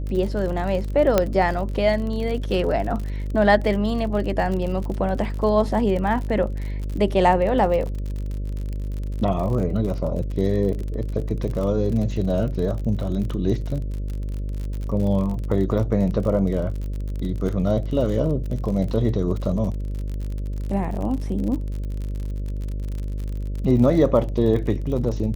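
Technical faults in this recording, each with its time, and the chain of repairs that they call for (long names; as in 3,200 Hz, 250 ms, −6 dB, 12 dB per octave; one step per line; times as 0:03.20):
mains buzz 50 Hz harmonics 12 −27 dBFS
surface crackle 50 per second −29 dBFS
0:01.18: click −4 dBFS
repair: click removal
hum removal 50 Hz, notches 12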